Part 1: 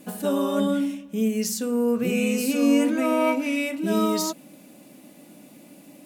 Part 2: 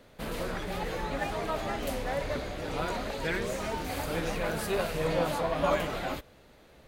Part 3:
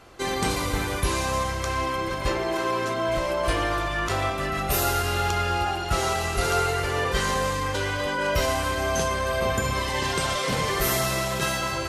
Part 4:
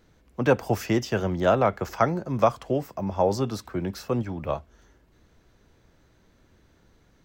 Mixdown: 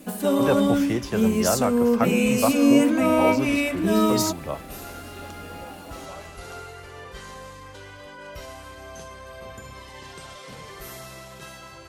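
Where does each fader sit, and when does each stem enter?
+2.5, -16.0, -15.5, -3.0 dB; 0.00, 0.45, 0.00, 0.00 s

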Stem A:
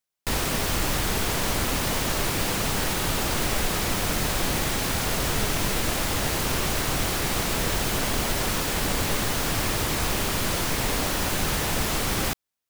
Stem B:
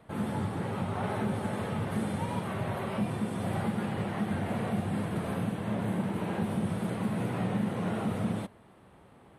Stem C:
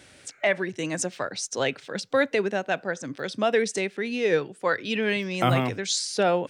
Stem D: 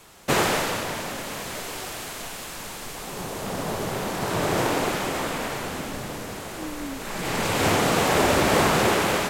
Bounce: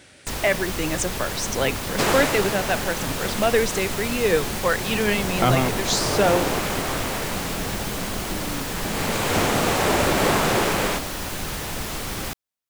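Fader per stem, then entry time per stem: -4.0, -6.0, +2.5, -0.5 dB; 0.00, 1.30, 0.00, 1.70 s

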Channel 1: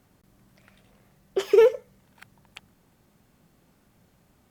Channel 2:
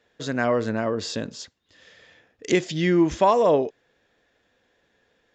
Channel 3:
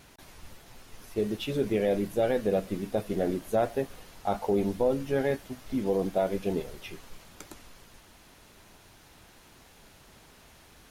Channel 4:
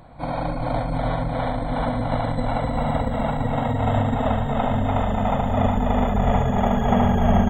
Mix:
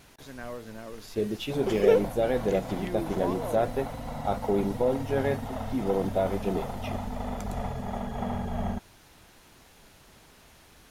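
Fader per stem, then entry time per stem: -5.0, -17.0, 0.0, -13.5 dB; 0.30, 0.00, 0.00, 1.30 s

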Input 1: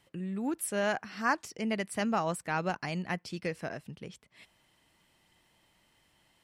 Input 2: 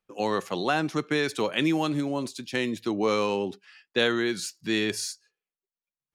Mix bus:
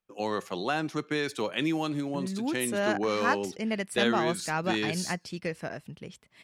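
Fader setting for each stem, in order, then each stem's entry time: +1.5, -4.0 dB; 2.00, 0.00 s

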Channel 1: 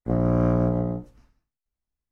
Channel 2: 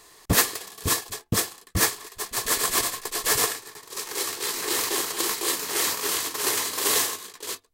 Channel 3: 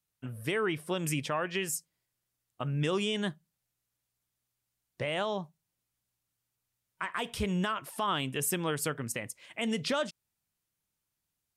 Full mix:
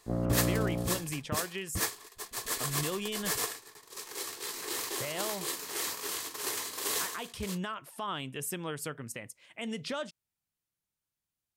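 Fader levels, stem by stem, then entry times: -9.0, -10.0, -5.5 dB; 0.00, 0.00, 0.00 s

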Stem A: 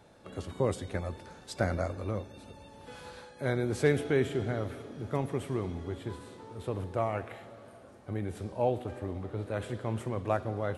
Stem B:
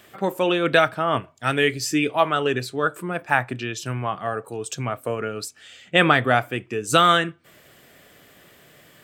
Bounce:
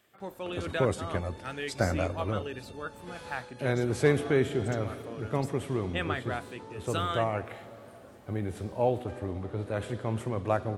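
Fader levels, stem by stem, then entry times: +2.0, -16.5 dB; 0.20, 0.00 s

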